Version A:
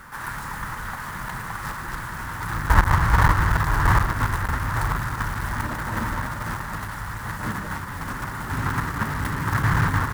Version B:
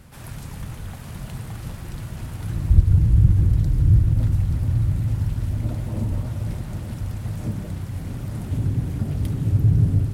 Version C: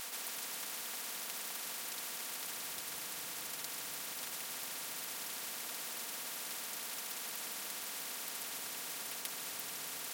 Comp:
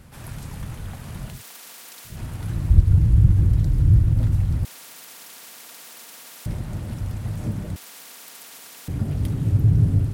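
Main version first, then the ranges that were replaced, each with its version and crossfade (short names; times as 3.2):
B
1.35–2.12 from C, crossfade 0.16 s
4.65–6.46 from C
7.76–8.88 from C
not used: A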